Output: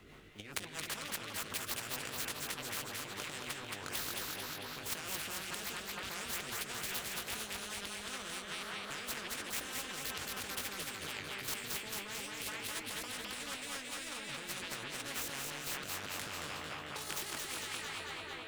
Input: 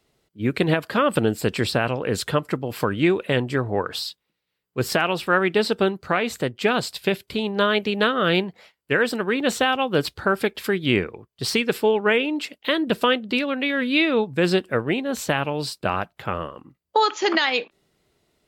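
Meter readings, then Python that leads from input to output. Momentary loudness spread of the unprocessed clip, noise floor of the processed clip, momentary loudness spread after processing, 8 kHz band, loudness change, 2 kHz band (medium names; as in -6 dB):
8 LU, -47 dBFS, 3 LU, -2.5 dB, -17.0 dB, -16.5 dB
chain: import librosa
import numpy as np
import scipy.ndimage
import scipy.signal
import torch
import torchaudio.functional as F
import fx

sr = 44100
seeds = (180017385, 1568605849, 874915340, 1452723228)

p1 = scipy.ndimage.median_filter(x, 9, mode='constant')
p2 = fx.tone_stack(p1, sr, knobs='6-0-2')
p3 = fx.doubler(p2, sr, ms=20.0, db=-2)
p4 = fx.echo_stepped(p3, sr, ms=209, hz=2600.0, octaves=-0.7, feedback_pct=70, wet_db=-4.0)
p5 = fx.over_compress(p4, sr, threshold_db=-49.0, ratio=-1.0)
p6 = fx.peak_eq(p5, sr, hz=950.0, db=11.5, octaves=2.7)
p7 = p6 + fx.echo_feedback(p6, sr, ms=223, feedback_pct=48, wet_db=-6.0, dry=0)
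p8 = fx.rotary(p7, sr, hz=5.0)
p9 = fx.spectral_comp(p8, sr, ratio=4.0)
y = F.gain(torch.from_numpy(p9), 6.0).numpy()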